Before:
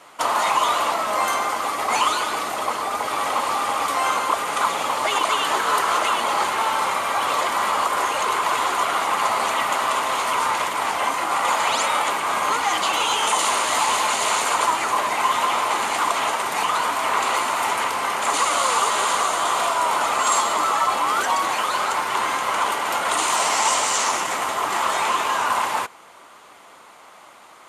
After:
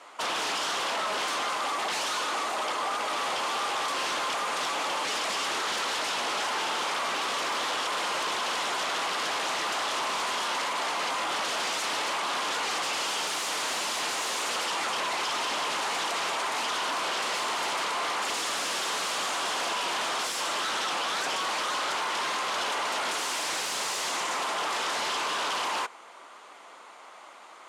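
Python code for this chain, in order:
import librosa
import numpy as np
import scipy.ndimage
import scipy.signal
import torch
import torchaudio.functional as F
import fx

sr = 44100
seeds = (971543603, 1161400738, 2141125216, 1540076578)

y = 10.0 ** (-22.5 / 20.0) * (np.abs((x / 10.0 ** (-22.5 / 20.0) + 3.0) % 4.0 - 2.0) - 1.0)
y = fx.bandpass_edges(y, sr, low_hz=290.0, high_hz=7900.0)
y = y * 10.0 ** (-2.0 / 20.0)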